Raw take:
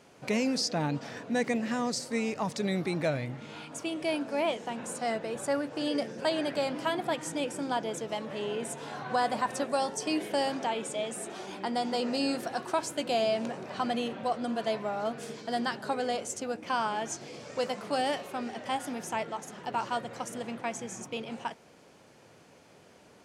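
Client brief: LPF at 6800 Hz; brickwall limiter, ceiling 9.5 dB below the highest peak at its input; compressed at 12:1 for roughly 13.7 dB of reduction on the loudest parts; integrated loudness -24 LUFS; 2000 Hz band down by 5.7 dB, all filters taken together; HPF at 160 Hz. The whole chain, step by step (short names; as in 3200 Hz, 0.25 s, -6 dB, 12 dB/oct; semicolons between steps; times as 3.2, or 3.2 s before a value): HPF 160 Hz; LPF 6800 Hz; bell 2000 Hz -7.5 dB; compressor 12:1, threshold -39 dBFS; gain +20.5 dB; limiter -14 dBFS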